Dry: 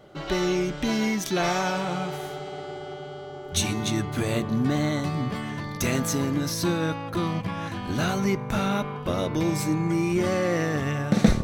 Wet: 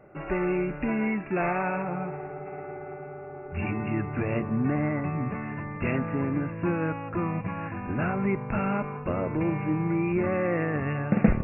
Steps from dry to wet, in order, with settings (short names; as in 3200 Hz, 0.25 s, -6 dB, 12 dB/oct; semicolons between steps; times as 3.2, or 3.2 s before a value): brick-wall FIR low-pass 2800 Hz; 1.82–2.46 high shelf 2100 Hz -9 dB; gain -2 dB